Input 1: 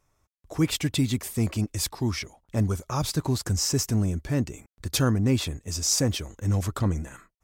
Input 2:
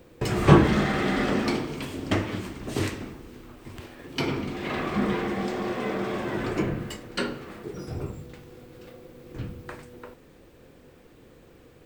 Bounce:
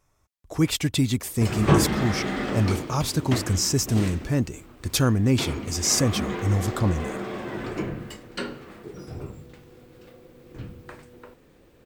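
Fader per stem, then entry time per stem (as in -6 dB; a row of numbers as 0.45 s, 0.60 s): +2.0 dB, -3.0 dB; 0.00 s, 1.20 s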